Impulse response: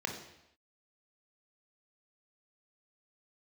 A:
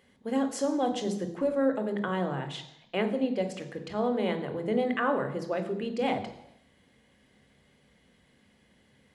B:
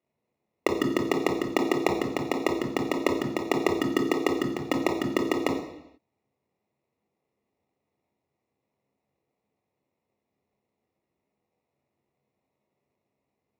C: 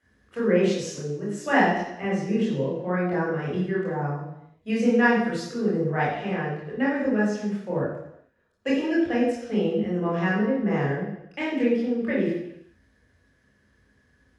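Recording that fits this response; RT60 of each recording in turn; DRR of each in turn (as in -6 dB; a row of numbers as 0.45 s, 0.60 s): B; no single decay rate, no single decay rate, no single decay rate; 7.0 dB, 2.5 dB, -6.0 dB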